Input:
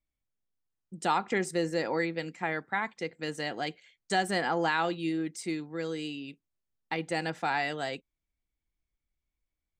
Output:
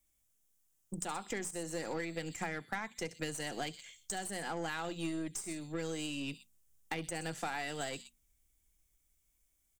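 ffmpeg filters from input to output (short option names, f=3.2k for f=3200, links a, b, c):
-filter_complex "[0:a]equalizer=f=3.4k:w=1.9:g=5.5,acrossover=split=130|3400[a][b][c];[a]dynaudnorm=f=330:g=11:m=9.5dB[d];[b]bandreject=f=940:w=19[e];[c]aecho=1:1:67.06|122.4:0.355|0.316[f];[d][e][f]amix=inputs=3:normalize=0,aexciter=amount=9.5:drive=4.9:freq=6.1k,acompressor=threshold=-40dB:ratio=12,highshelf=f=8.8k:g=-12,bandreject=f=60:t=h:w=6,bandreject=f=120:t=h:w=6,bandreject=f=180:t=h:w=6,bandreject=f=240:t=h:w=6,aeval=exprs='0.0237*(cos(1*acos(clip(val(0)/0.0237,-1,1)))-cos(1*PI/2))+0.00188*(cos(6*acos(clip(val(0)/0.0237,-1,1)))-cos(6*PI/2))':c=same,volume=5.5dB"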